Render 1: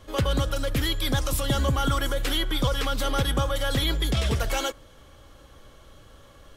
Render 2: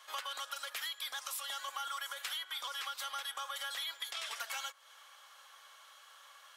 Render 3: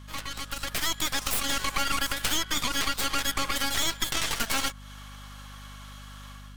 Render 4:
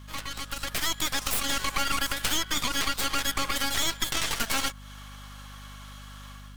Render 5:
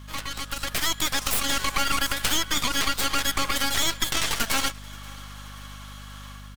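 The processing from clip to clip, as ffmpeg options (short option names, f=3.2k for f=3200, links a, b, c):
-af "highpass=f=920:w=0.5412,highpass=f=920:w=1.3066,acompressor=threshold=-38dB:ratio=6"
-af "aeval=exprs='0.0562*(cos(1*acos(clip(val(0)/0.0562,-1,1)))-cos(1*PI/2))+0.02*(cos(4*acos(clip(val(0)/0.0562,-1,1)))-cos(4*PI/2))+0.00794*(cos(8*acos(clip(val(0)/0.0562,-1,1)))-cos(8*PI/2))':c=same,dynaudnorm=f=450:g=3:m=9dB,aeval=exprs='val(0)+0.00631*(sin(2*PI*50*n/s)+sin(2*PI*2*50*n/s)/2+sin(2*PI*3*50*n/s)/3+sin(2*PI*4*50*n/s)/4+sin(2*PI*5*50*n/s)/5)':c=same"
-af "acrusher=bits=6:mode=log:mix=0:aa=0.000001"
-af "aecho=1:1:530|1060|1590|2120:0.0668|0.0368|0.0202|0.0111,volume=3dB"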